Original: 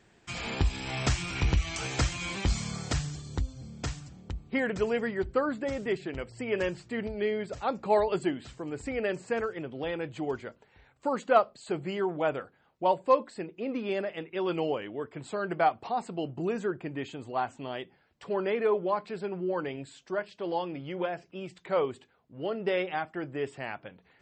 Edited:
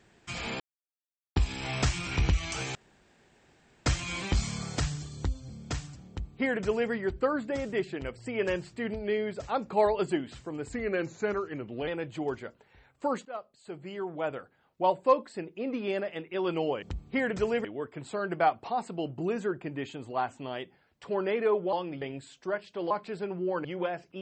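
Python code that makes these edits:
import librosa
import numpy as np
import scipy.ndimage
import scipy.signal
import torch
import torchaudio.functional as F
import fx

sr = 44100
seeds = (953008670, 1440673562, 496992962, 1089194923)

y = fx.edit(x, sr, fx.insert_silence(at_s=0.6, length_s=0.76),
    fx.insert_room_tone(at_s=1.99, length_s=1.11),
    fx.duplicate(start_s=4.22, length_s=0.82, to_s=14.84),
    fx.speed_span(start_s=8.85, length_s=1.04, speed=0.9),
    fx.fade_in_from(start_s=11.27, length_s=1.66, floor_db=-21.0),
    fx.swap(start_s=18.92, length_s=0.74, other_s=20.55, other_length_s=0.29), tone=tone)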